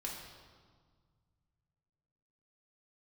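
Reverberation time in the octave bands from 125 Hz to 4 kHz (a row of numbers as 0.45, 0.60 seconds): 3.3, 2.3, 1.7, 1.7, 1.3, 1.3 seconds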